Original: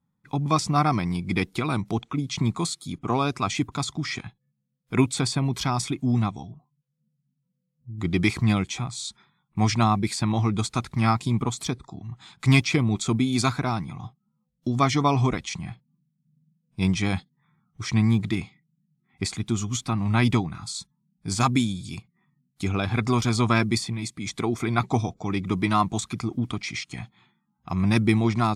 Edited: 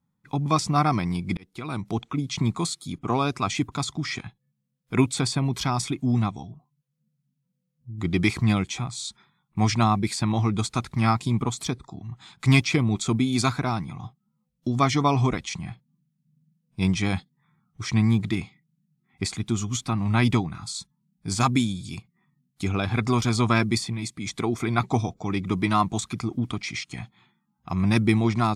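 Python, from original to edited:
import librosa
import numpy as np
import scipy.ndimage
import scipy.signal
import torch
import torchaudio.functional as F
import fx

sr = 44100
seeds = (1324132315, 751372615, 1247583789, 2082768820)

y = fx.edit(x, sr, fx.fade_in_span(start_s=1.37, length_s=0.65), tone=tone)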